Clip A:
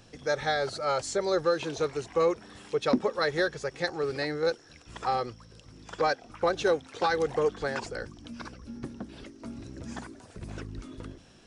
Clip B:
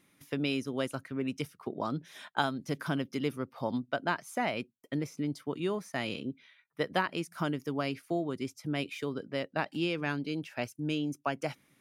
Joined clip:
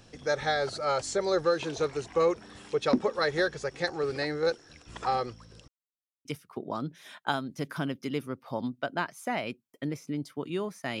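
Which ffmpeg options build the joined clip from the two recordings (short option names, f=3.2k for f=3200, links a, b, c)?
-filter_complex "[0:a]apad=whole_dur=11,atrim=end=11,asplit=2[a][b];[a]atrim=end=5.68,asetpts=PTS-STARTPTS,afade=t=out:st=5.676:d=0.004:c=hsin[c];[b]atrim=start=5.68:end=6.25,asetpts=PTS-STARTPTS,volume=0[d];[1:a]atrim=start=1.35:end=6.1,asetpts=PTS-STARTPTS,afade=t=in:d=0.004:c=hsin[e];[c][d][e]concat=n=3:v=0:a=1"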